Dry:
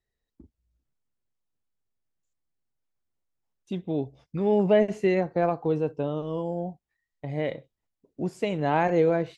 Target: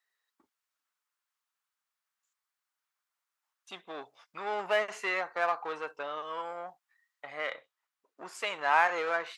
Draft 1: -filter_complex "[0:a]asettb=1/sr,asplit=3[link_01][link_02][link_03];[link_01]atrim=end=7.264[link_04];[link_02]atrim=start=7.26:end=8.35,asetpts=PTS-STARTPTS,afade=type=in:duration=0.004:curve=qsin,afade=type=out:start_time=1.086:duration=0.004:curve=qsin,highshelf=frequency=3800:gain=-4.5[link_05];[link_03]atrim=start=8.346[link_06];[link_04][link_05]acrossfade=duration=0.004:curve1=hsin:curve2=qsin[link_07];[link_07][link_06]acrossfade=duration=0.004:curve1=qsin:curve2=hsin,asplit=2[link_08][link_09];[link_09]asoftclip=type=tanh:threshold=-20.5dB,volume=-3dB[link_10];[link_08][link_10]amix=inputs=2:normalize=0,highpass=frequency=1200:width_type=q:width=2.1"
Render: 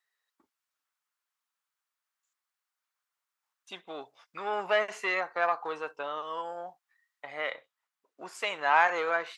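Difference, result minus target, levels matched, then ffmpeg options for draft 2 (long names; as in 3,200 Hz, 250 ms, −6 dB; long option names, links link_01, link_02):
soft clipping: distortion −7 dB
-filter_complex "[0:a]asettb=1/sr,asplit=3[link_01][link_02][link_03];[link_01]atrim=end=7.264[link_04];[link_02]atrim=start=7.26:end=8.35,asetpts=PTS-STARTPTS,afade=type=in:duration=0.004:curve=qsin,afade=type=out:start_time=1.086:duration=0.004:curve=qsin,highshelf=frequency=3800:gain=-4.5[link_05];[link_03]atrim=start=8.346[link_06];[link_04][link_05]acrossfade=duration=0.004:curve1=hsin:curve2=qsin[link_07];[link_07][link_06]acrossfade=duration=0.004:curve1=qsin:curve2=hsin,asplit=2[link_08][link_09];[link_09]asoftclip=type=tanh:threshold=-31.5dB,volume=-3dB[link_10];[link_08][link_10]amix=inputs=2:normalize=0,highpass=frequency=1200:width_type=q:width=2.1"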